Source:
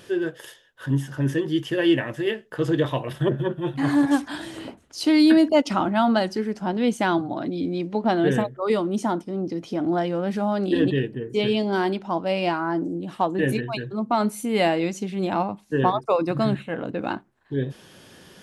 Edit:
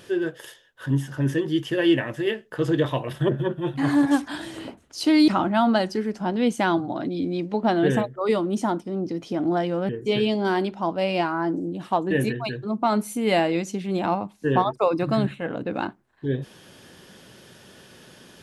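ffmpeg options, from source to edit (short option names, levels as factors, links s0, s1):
-filter_complex "[0:a]asplit=3[s0][s1][s2];[s0]atrim=end=5.282[s3];[s1]atrim=start=5.688:end=10.302[s4];[s2]atrim=start=11.168[s5];[s3][s4]acrossfade=d=0.004:c1=hsin:c2=hsin[s6];[s6][s5]acrossfade=d=0.004:c1=hsin:c2=hsin"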